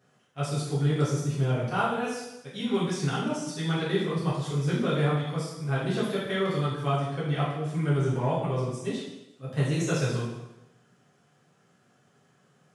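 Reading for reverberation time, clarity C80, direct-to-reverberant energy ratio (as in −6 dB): 0.95 s, 5.0 dB, −9.0 dB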